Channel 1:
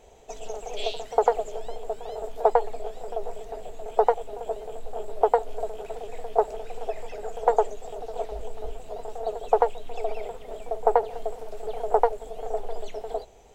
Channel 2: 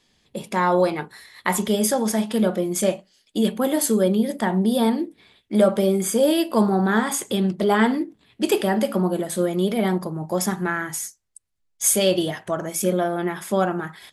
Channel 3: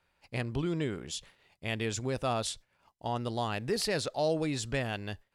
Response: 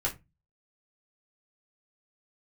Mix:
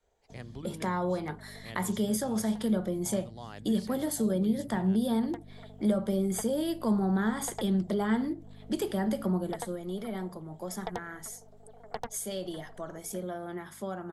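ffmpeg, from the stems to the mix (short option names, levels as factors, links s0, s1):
-filter_complex "[0:a]adynamicequalizer=threshold=0.02:dfrequency=710:dqfactor=1.4:tfrequency=710:tqfactor=1.4:attack=5:release=100:ratio=0.375:range=2.5:mode=boostabove:tftype=bell,aeval=exprs='0.708*(cos(1*acos(clip(val(0)/0.708,-1,1)))-cos(1*PI/2))+0.158*(cos(7*acos(clip(val(0)/0.708,-1,1)))-cos(7*PI/2))':c=same,volume=0.15[s0];[1:a]aeval=exprs='val(0)+0.01*(sin(2*PI*50*n/s)+sin(2*PI*2*50*n/s)/2+sin(2*PI*3*50*n/s)/3+sin(2*PI*4*50*n/s)/4+sin(2*PI*5*50*n/s)/5)':c=same,highpass=110,adelay=300,volume=0.75,afade=t=out:st=9.28:d=0.51:silence=0.298538[s1];[2:a]volume=0.316,asplit=2[s2][s3];[s3]apad=whole_len=597223[s4];[s0][s4]sidechaincompress=threshold=0.00141:ratio=8:attack=35:release=390[s5];[s5][s1][s2]amix=inputs=3:normalize=0,equalizer=f=2600:w=7.6:g=-11,acrossover=split=200[s6][s7];[s7]acompressor=threshold=0.0178:ratio=2.5[s8];[s6][s8]amix=inputs=2:normalize=0"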